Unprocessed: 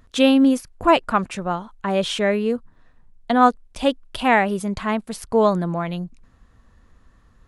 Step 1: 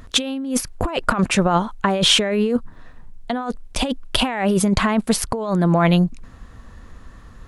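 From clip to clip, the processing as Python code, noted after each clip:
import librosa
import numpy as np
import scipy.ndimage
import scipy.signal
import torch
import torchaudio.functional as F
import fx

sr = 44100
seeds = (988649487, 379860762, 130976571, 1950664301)

y = fx.over_compress(x, sr, threshold_db=-26.0, ratio=-1.0)
y = y * librosa.db_to_amplitude(6.5)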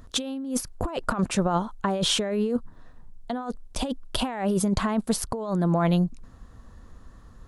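y = fx.peak_eq(x, sr, hz=2300.0, db=-7.5, octaves=1.1)
y = y * librosa.db_to_amplitude(-6.0)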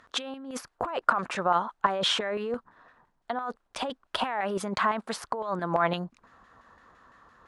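y = fx.filter_lfo_bandpass(x, sr, shape='saw_down', hz=5.9, low_hz=980.0, high_hz=2000.0, q=1.2)
y = y * librosa.db_to_amplitude(6.5)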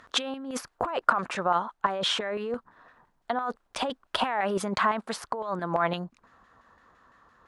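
y = fx.rider(x, sr, range_db=10, speed_s=2.0)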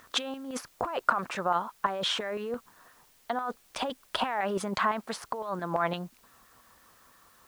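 y = fx.quant_dither(x, sr, seeds[0], bits=10, dither='triangular')
y = y * librosa.db_to_amplitude(-2.5)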